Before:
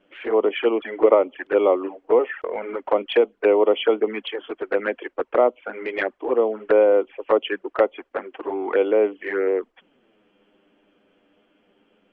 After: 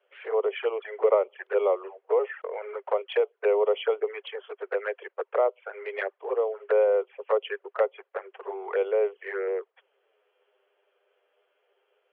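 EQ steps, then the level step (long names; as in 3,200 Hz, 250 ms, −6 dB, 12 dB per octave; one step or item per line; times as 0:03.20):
Chebyshev high-pass filter 400 Hz, order 6
high-frequency loss of the air 170 metres
−5.0 dB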